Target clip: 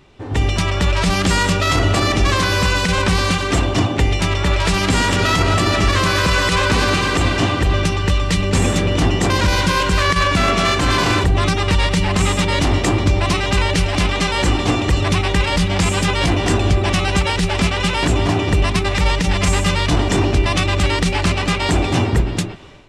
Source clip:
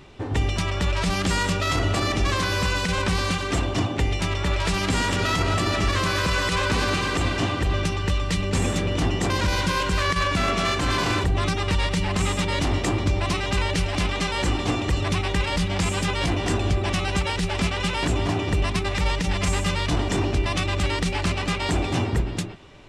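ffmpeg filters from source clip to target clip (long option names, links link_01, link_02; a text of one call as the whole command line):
ffmpeg -i in.wav -af "dynaudnorm=framelen=210:gausssize=3:maxgain=12dB,volume=-3dB" out.wav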